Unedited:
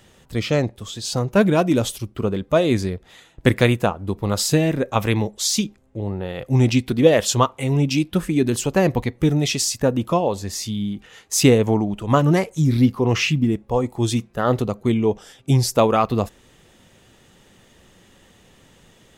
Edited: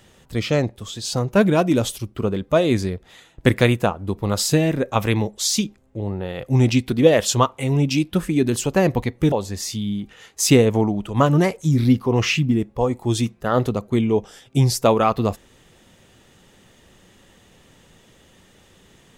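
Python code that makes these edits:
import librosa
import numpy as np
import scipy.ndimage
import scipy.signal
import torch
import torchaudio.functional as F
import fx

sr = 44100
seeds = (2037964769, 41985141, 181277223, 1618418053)

y = fx.edit(x, sr, fx.cut(start_s=9.32, length_s=0.93), tone=tone)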